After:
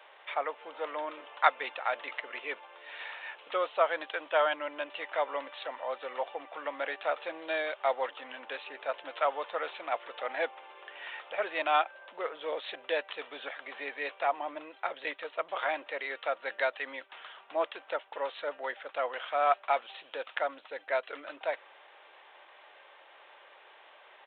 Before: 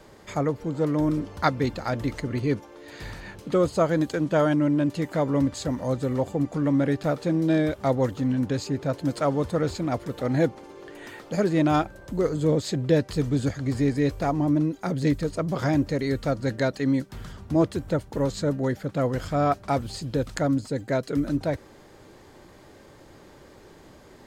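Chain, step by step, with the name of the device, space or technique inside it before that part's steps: musical greeting card (downsampling 8000 Hz; HPF 660 Hz 24 dB/oct; bell 2700 Hz +6.5 dB 0.53 oct)

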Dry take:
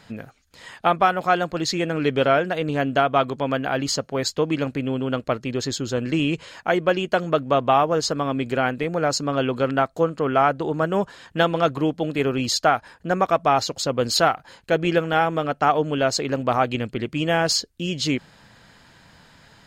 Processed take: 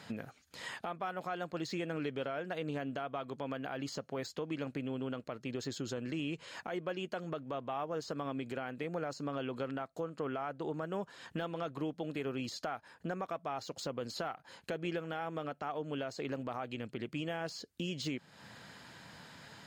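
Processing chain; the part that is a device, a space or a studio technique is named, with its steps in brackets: podcast mastering chain (HPF 110 Hz; de-esser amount 65%; compressor 3:1, threshold -37 dBFS, peak gain reduction 17.5 dB; limiter -26 dBFS, peak gain reduction 7 dB; gain -1 dB; MP3 96 kbps 48000 Hz)

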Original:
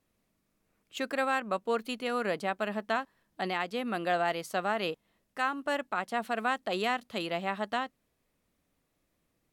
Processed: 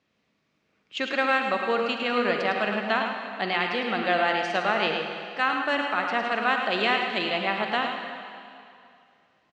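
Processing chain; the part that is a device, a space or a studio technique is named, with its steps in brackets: PA in a hall (HPF 110 Hz 12 dB/oct; bell 2500 Hz +5.5 dB 1.6 oct; echo 0.107 s -7 dB; reverb RT60 2.5 s, pre-delay 38 ms, DRR 4.5 dB); LPF 5800 Hz 24 dB/oct; gain +3 dB

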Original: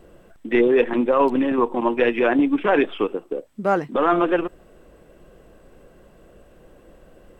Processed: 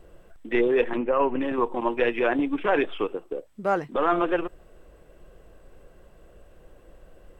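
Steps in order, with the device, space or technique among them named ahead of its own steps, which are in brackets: low shelf boost with a cut just above (low shelf 66 Hz +7 dB; bell 230 Hz -5.5 dB 0.99 oct); 0.97–1.41 Chebyshev low-pass 2900 Hz, order 5; gain -3.5 dB

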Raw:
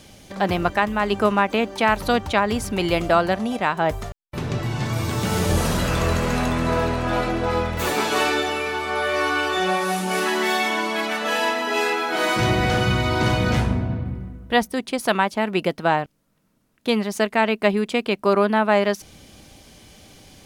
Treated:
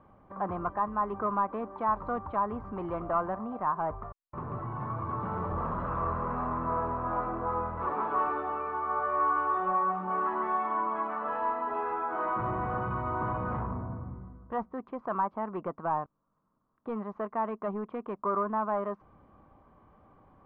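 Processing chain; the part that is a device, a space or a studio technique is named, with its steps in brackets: overdriven synthesiser ladder filter (soft clip -16.5 dBFS, distortion -12 dB; ladder low-pass 1200 Hz, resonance 75%)

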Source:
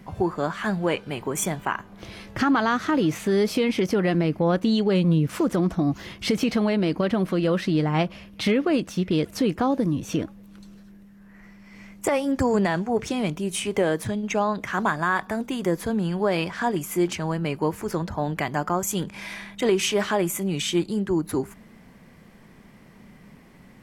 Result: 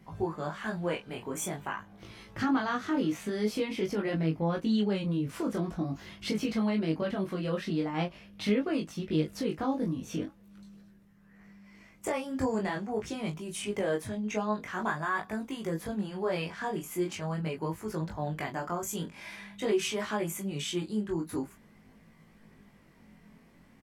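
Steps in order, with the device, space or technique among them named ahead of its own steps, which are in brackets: double-tracked vocal (doubler 19 ms -5.5 dB; chorus 0.45 Hz, delay 18 ms, depth 5.5 ms); gain -6.5 dB

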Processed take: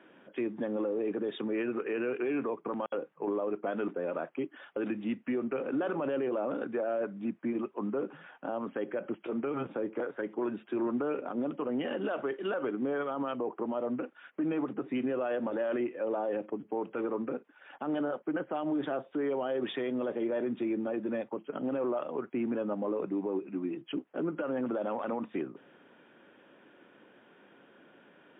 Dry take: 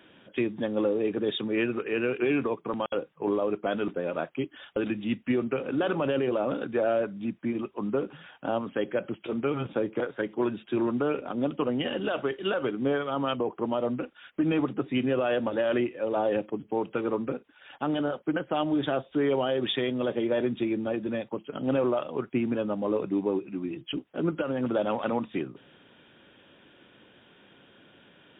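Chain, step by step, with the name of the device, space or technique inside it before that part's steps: DJ mixer with the lows and highs turned down (three-band isolator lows -18 dB, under 180 Hz, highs -22 dB, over 2400 Hz; limiter -24.5 dBFS, peak gain reduction 9 dB)

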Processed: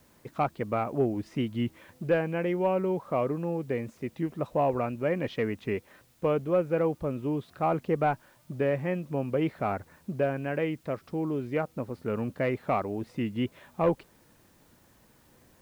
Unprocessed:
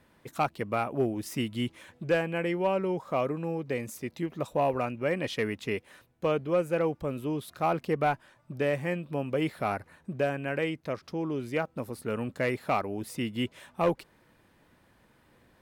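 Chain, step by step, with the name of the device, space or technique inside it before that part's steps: cassette deck with a dirty head (tape spacing loss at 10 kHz 28 dB; wow and flutter; white noise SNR 36 dB); gain +2.5 dB

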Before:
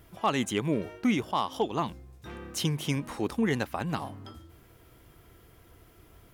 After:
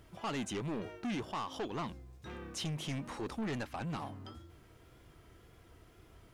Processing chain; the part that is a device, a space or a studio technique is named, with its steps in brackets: compact cassette (soft clip -30.5 dBFS, distortion -7 dB; LPF 8500 Hz 12 dB/oct; wow and flutter; white noise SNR 41 dB); gain -3 dB

